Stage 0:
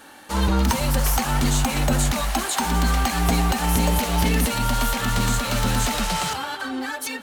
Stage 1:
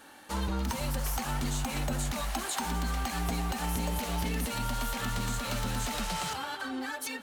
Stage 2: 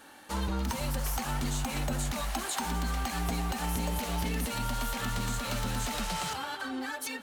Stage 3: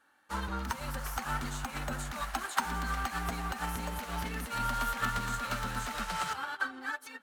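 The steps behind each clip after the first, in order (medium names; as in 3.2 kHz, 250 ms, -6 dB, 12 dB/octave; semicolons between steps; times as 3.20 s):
compression 2.5:1, threshold -23 dBFS, peak gain reduction 5.5 dB; trim -7 dB
no audible change
peaking EQ 1.4 kHz +10.5 dB 1.1 oct; upward expansion 2.5:1, over -39 dBFS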